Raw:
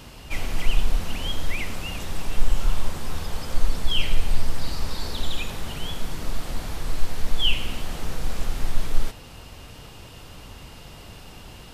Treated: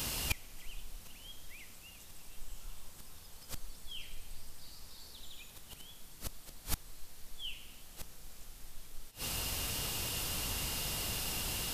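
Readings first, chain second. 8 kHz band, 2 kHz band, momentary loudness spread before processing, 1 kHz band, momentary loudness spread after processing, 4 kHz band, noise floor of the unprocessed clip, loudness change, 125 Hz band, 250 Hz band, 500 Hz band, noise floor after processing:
-0.5 dB, -10.5 dB, 17 LU, -12.0 dB, 18 LU, -10.5 dB, -43 dBFS, -9.0 dB, -15.0 dB, -14.0 dB, -13.0 dB, -54 dBFS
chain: pre-emphasis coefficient 0.8; flipped gate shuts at -30 dBFS, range -27 dB; gain +14.5 dB

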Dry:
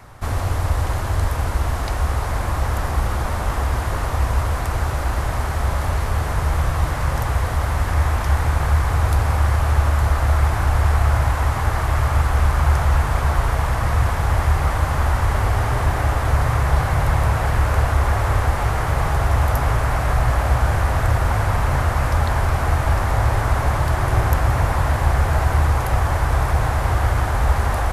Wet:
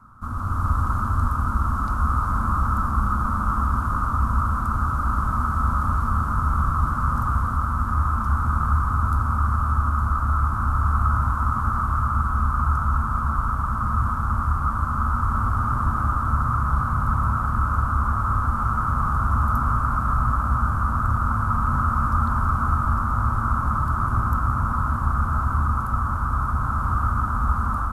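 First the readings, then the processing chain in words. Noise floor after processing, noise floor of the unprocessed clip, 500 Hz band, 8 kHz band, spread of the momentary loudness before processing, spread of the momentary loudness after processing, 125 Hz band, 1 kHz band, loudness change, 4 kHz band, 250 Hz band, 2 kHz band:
-26 dBFS, -24 dBFS, -16.5 dB, under -10 dB, 4 LU, 2 LU, -4.5 dB, +1.0 dB, -2.5 dB, under -15 dB, +0.5 dB, -6.5 dB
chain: EQ curve 160 Hz 0 dB, 220 Hz +11 dB, 410 Hz -13 dB, 750 Hz -12 dB, 1300 Hz +14 dB, 1900 Hz -21 dB, 9300 Hz -10 dB; AGC; gain -9 dB

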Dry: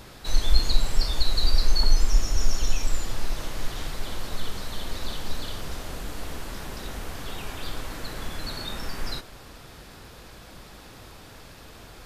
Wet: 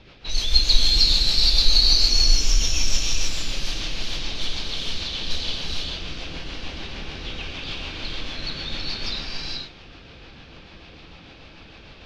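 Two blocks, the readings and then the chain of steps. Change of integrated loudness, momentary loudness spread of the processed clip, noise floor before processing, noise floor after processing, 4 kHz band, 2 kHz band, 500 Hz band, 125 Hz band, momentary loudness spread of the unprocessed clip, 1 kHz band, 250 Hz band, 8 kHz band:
+9.0 dB, 17 LU, -46 dBFS, -46 dBFS, +12.5 dB, +6.0 dB, -0.5 dB, +0.5 dB, 21 LU, -1.5 dB, +1.5 dB, +8.0 dB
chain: low-pass opened by the level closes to 2000 Hz, open at -16 dBFS; band shelf 3800 Hz +13 dB; rotary speaker horn 6.7 Hz; non-linear reverb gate 0.49 s rising, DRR -2 dB; gain -2 dB

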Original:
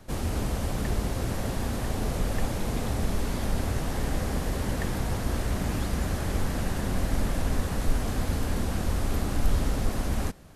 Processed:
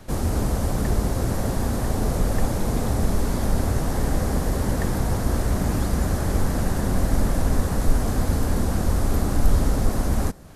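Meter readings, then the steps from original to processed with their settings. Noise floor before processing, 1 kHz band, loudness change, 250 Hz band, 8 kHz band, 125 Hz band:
-32 dBFS, +5.0 dB, +5.5 dB, +6.0 dB, +5.0 dB, +6.0 dB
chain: dynamic EQ 2800 Hz, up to -8 dB, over -58 dBFS, Q 1.1; gain +6 dB

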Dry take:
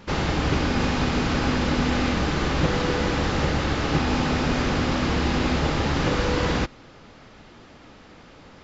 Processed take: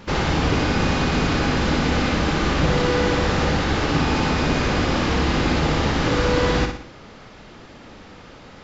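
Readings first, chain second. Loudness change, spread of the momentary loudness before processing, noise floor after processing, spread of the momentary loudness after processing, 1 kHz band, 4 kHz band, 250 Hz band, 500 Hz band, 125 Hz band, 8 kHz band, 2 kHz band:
+3.0 dB, 1 LU, -43 dBFS, 1 LU, +3.5 dB, +3.5 dB, +2.5 dB, +4.0 dB, +3.0 dB, n/a, +3.5 dB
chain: in parallel at -2.5 dB: limiter -19.5 dBFS, peak gain reduction 11 dB; on the sum: flutter echo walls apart 10.1 m, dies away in 0.53 s; gain -1 dB

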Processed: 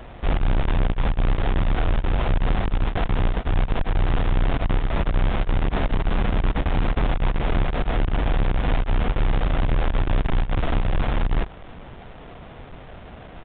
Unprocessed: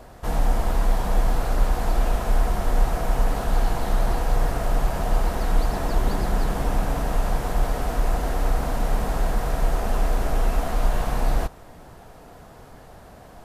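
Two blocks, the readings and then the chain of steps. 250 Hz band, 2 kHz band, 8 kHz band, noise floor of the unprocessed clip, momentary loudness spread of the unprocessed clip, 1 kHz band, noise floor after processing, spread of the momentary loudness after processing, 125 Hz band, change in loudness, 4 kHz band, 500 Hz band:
+3.0 dB, +3.0 dB, under -40 dB, -46 dBFS, 2 LU, -1.5 dB, -41 dBFS, 18 LU, +3.5 dB, +1.0 dB, +2.5 dB, -1.0 dB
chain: half-waves squared off; limiter -15.5 dBFS, peak gain reduction 32 dB; downsampling 8000 Hz

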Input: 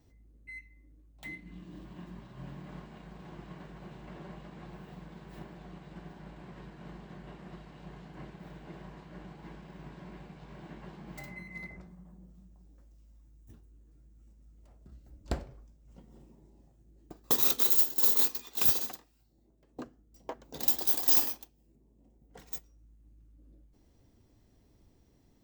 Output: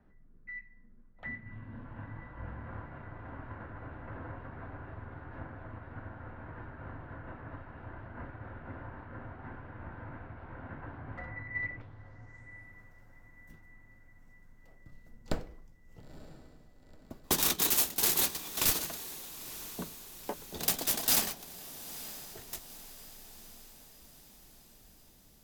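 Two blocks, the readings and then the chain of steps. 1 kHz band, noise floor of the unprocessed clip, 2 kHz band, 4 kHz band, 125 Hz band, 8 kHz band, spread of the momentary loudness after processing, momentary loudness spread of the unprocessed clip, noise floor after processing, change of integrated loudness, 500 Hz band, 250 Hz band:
+3.5 dB, -66 dBFS, +6.5 dB, +4.0 dB, +3.0 dB, +5.5 dB, 24 LU, 23 LU, -58 dBFS, -8.5 dB, +2.0 dB, +0.5 dB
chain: median filter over 3 samples; frequency shift -73 Hz; low-pass sweep 1500 Hz -> 15000 Hz, 11.43–12.79; diffused feedback echo 0.932 s, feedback 54%, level -14.5 dB; gain +2 dB

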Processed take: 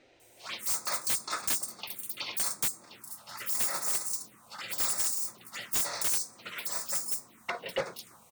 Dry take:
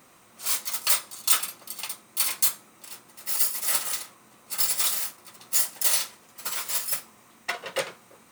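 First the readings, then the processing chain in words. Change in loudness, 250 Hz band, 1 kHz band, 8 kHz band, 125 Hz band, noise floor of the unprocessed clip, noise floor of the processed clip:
-5.5 dB, +1.0 dB, -2.5 dB, -5.0 dB, n/a, -56 dBFS, -59 dBFS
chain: bands offset in time lows, highs 0.2 s, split 4700 Hz; envelope phaser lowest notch 170 Hz, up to 3000 Hz, full sweep at -28.5 dBFS; wavefolder -22 dBFS

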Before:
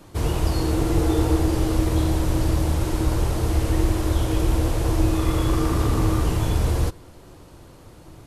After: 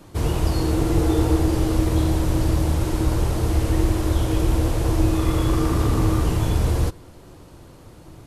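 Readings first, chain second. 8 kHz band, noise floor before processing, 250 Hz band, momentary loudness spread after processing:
0.0 dB, -46 dBFS, +1.5 dB, 3 LU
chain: bell 170 Hz +2 dB 2.4 oct

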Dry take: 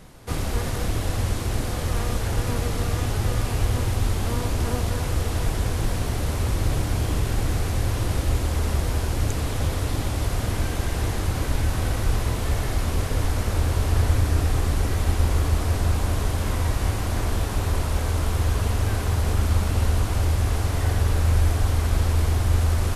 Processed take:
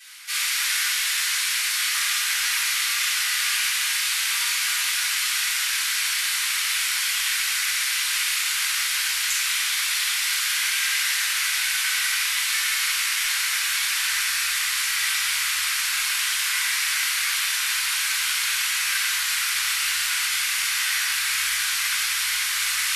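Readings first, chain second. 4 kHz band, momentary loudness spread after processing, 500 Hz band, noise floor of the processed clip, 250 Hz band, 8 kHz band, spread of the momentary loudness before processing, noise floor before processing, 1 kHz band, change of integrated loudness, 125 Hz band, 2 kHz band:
+14.5 dB, 1 LU, under -30 dB, -25 dBFS, under -40 dB, +13.5 dB, 4 LU, -28 dBFS, -1.5 dB, +3.5 dB, under -40 dB, +13.5 dB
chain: inverse Chebyshev high-pass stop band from 520 Hz, stop band 60 dB; shoebox room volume 430 m³, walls mixed, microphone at 8.3 m

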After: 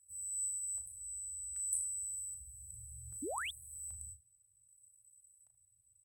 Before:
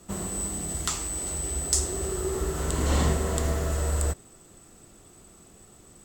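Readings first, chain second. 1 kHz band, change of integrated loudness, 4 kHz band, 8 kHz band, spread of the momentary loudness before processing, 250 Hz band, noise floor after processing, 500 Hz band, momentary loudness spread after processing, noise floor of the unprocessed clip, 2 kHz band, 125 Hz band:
-15.0 dB, -11.5 dB, -15.5 dB, -8.5 dB, 5 LU, -23.0 dB, -73 dBFS, -21.0 dB, 13 LU, -53 dBFS, -10.5 dB, -29.5 dB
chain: FFT band-reject 120–7800 Hz; bell 11000 Hz +13.5 dB 2.9 oct; LFO band-pass square 0.64 Hz 740–1500 Hz; early reflections 35 ms -8 dB, 79 ms -16.5 dB; painted sound rise, 3.22–3.51, 250–3800 Hz -42 dBFS; gain +2 dB

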